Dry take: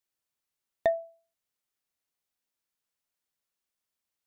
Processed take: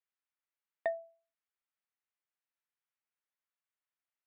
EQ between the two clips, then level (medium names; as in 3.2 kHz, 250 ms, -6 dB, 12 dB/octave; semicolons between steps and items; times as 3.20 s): band-pass filter 2 kHz, Q 0.76; distance through air 380 m; 0.0 dB